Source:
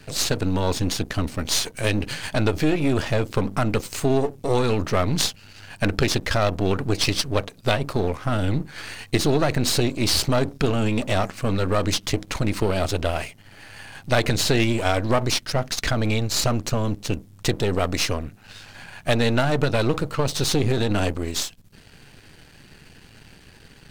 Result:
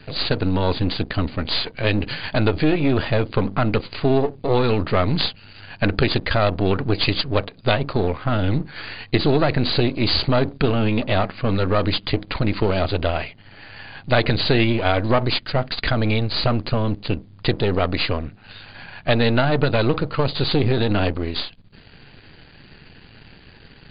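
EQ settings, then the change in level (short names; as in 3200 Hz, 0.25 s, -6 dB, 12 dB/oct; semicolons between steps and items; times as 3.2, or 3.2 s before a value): brick-wall FIR low-pass 4900 Hz; +2.5 dB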